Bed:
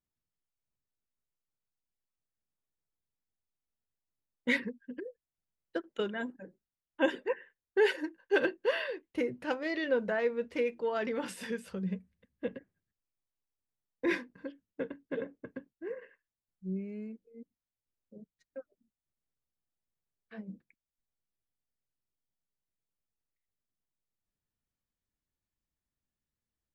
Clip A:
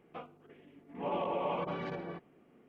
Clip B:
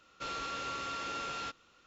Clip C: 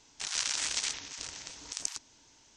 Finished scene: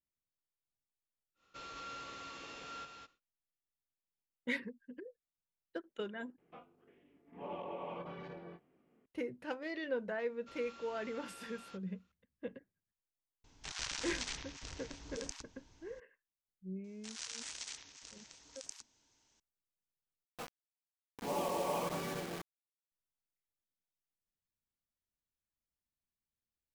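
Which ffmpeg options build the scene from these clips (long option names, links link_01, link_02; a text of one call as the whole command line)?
ffmpeg -i bed.wav -i cue0.wav -i cue1.wav -i cue2.wav -filter_complex "[2:a]asplit=2[link_01][link_02];[1:a]asplit=2[link_03][link_04];[3:a]asplit=2[link_05][link_06];[0:a]volume=-7.5dB[link_07];[link_01]aecho=1:1:210:0.596[link_08];[link_03]asplit=2[link_09][link_10];[link_10]adelay=23,volume=-8dB[link_11];[link_09][link_11]amix=inputs=2:normalize=0[link_12];[link_05]aemphasis=mode=reproduction:type=bsi[link_13];[link_04]acrusher=bits=6:mix=0:aa=0.000001[link_14];[link_07]asplit=3[link_15][link_16][link_17];[link_15]atrim=end=6.384[link_18];[link_12]atrim=end=2.68,asetpts=PTS-STARTPTS,volume=-10dB[link_19];[link_16]atrim=start=9.056:end=20.244[link_20];[link_14]atrim=end=2.68,asetpts=PTS-STARTPTS,volume=-2dB[link_21];[link_17]atrim=start=22.916[link_22];[link_08]atrim=end=1.86,asetpts=PTS-STARTPTS,volume=-10dB,afade=type=in:duration=0.1,afade=type=out:start_time=1.76:duration=0.1,adelay=1340[link_23];[link_02]atrim=end=1.86,asetpts=PTS-STARTPTS,volume=-16dB,afade=type=in:duration=0.004:curve=hsin,afade=type=out:start_time=1.856:duration=0.004:curve=hsin,adelay=452466S[link_24];[link_13]atrim=end=2.56,asetpts=PTS-STARTPTS,volume=-4dB,afade=type=in:duration=0.004:curve=hsin,afade=type=out:start_time=2.556:duration=0.004:curve=hsin,adelay=13440[link_25];[link_06]atrim=end=2.56,asetpts=PTS-STARTPTS,volume=-13dB,afade=type=in:duration=0.004:curve=hsin,afade=type=out:start_time=2.556:duration=0.004:curve=hsin,adelay=742644S[link_26];[link_18][link_19]acrossfade=duration=0.004:curve1=hsin:curve2=hsin[link_27];[link_27][link_20]acrossfade=duration=0.004:curve1=hsin:curve2=hsin[link_28];[link_28][link_21]acrossfade=duration=0.004:curve1=hsin:curve2=hsin[link_29];[link_29][link_22]acrossfade=duration=0.004:curve1=hsin:curve2=hsin[link_30];[link_30][link_23][link_24][link_25][link_26]amix=inputs=5:normalize=0" out.wav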